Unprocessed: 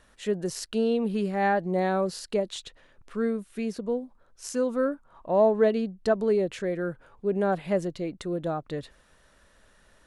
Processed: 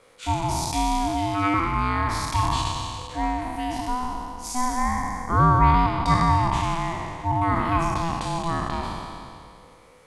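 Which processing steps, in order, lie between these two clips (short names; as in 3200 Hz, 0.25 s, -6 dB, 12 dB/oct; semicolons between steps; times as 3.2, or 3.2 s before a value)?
spectral trails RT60 2.33 s; 1.54–2.43 HPF 280 Hz 24 dB/oct; ring modulator 500 Hz; gain +4 dB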